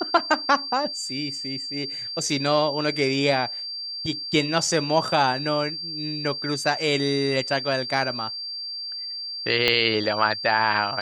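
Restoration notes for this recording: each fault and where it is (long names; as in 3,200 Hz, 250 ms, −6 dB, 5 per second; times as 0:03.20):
whistle 4,700 Hz −30 dBFS
0:09.68: click −7 dBFS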